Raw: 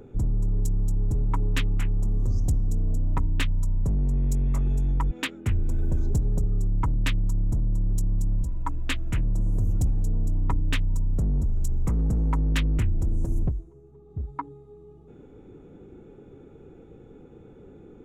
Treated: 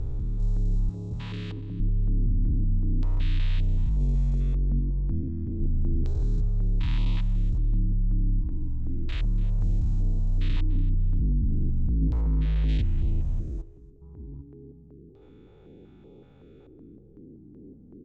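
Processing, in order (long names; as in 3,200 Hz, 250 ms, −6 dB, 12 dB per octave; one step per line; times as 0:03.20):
spectrum averaged block by block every 400 ms
0:00.89–0:01.80: high-pass filter 100 Hz
0:13.41–0:14.19: low-shelf EQ 170 Hz −7 dB
auto-filter low-pass square 0.33 Hz 290–4,200 Hz
0:12.21–0:12.69: high-shelf EQ 2,200 Hz −11.5 dB
repeating echo 289 ms, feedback 29%, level −19 dB
notch on a step sequencer 5.3 Hz 200–1,600 Hz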